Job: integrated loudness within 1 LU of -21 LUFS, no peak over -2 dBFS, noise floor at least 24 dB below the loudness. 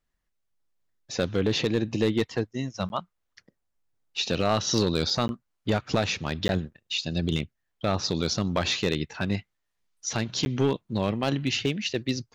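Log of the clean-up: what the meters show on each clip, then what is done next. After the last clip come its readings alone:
clipped samples 0.6%; clipping level -15.5 dBFS; dropouts 4; longest dropout 11 ms; loudness -27.5 LUFS; peak level -15.5 dBFS; loudness target -21.0 LUFS
-> clip repair -15.5 dBFS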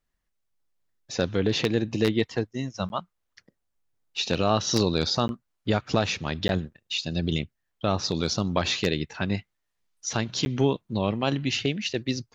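clipped samples 0.0%; dropouts 4; longest dropout 11 ms
-> interpolate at 2.89/5.28/6.48/10.45 s, 11 ms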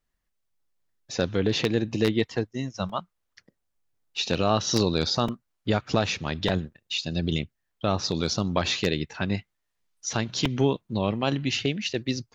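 dropouts 0; loudness -27.0 LUFS; peak level -6.5 dBFS; loudness target -21.0 LUFS
-> trim +6 dB; peak limiter -2 dBFS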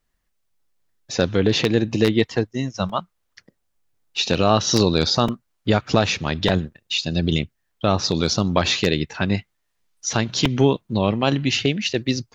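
loudness -21.0 LUFS; peak level -2.0 dBFS; noise floor -73 dBFS

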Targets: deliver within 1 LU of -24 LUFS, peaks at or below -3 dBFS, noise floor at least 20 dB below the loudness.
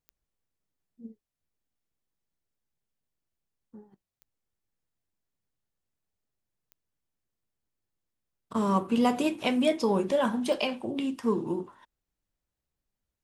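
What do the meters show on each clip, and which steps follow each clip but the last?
clicks found 4; loudness -28.0 LUFS; peak level -12.0 dBFS; loudness target -24.0 LUFS
-> de-click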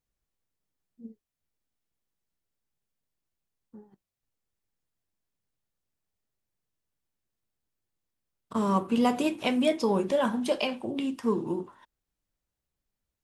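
clicks found 0; loudness -28.0 LUFS; peak level -12.0 dBFS; loudness target -24.0 LUFS
-> trim +4 dB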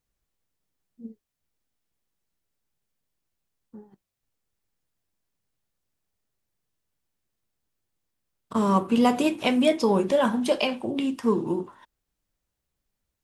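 loudness -24.0 LUFS; peak level -8.0 dBFS; noise floor -83 dBFS

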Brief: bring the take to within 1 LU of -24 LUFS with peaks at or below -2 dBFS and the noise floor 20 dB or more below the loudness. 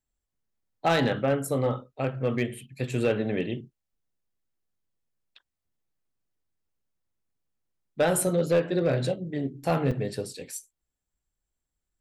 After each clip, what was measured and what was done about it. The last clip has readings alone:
clipped samples 0.3%; clipping level -16.0 dBFS; dropouts 1; longest dropout 4.9 ms; loudness -27.5 LUFS; peak level -16.0 dBFS; loudness target -24.0 LUFS
-> clip repair -16 dBFS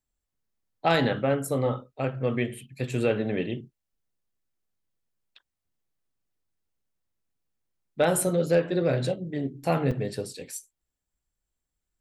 clipped samples 0.0%; dropouts 1; longest dropout 4.9 ms
-> interpolate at 9.91 s, 4.9 ms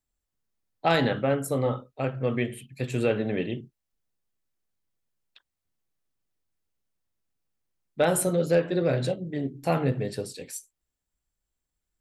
dropouts 0; loudness -27.0 LUFS; peak level -9.0 dBFS; loudness target -24.0 LUFS
-> trim +3 dB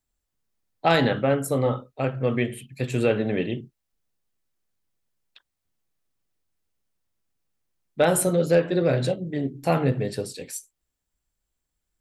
loudness -24.0 LUFS; peak level -6.0 dBFS; noise floor -81 dBFS

